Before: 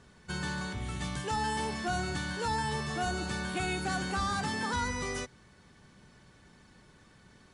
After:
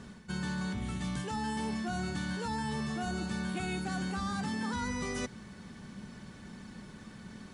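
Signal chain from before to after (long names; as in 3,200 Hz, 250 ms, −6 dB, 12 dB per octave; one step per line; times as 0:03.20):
parametric band 210 Hz +11 dB 0.58 octaves
reversed playback
downward compressor 4 to 1, threshold −41 dBFS, peak gain reduction 13 dB
reversed playback
level +6.5 dB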